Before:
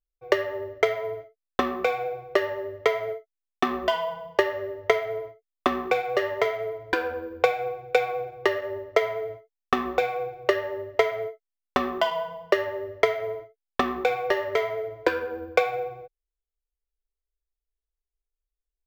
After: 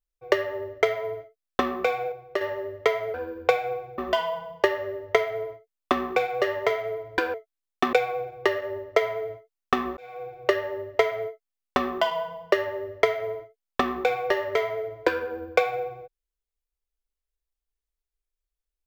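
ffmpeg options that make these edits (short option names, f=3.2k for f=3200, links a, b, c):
-filter_complex "[0:a]asplit=8[a][b][c][d][e][f][g][h];[a]atrim=end=2.122[i];[b]atrim=start=2.118:end=2.412,asetpts=PTS-STARTPTS,volume=-5.5dB[j];[c]atrim=start=2.408:end=3.142[k];[d]atrim=start=7.088:end=7.932[l];[e]atrim=start=3.728:end=7.092[m];[f]atrim=start=3.138:end=3.732[n];[g]atrim=start=7.928:end=9.97,asetpts=PTS-STARTPTS,afade=t=out:st=2.038:d=0.004:c=hsin[o];[h]atrim=start=9.97,asetpts=PTS-STARTPTS,afade=t=in:d=0.52[p];[i][j]acrossfade=d=0.004:c1=hsin:c2=hsin[q];[q][k]acrossfade=d=0.004:c1=hsin:c2=hsin[r];[r][l]acrossfade=d=0.004:c1=hsin:c2=hsin[s];[s][m]acrossfade=d=0.004:c1=hsin:c2=hsin[t];[t][n]acrossfade=d=0.004:c1=hsin:c2=hsin[u];[o][p]concat=n=2:v=0:a=1[v];[u][v]acrossfade=d=0.004:c1=hsin:c2=hsin"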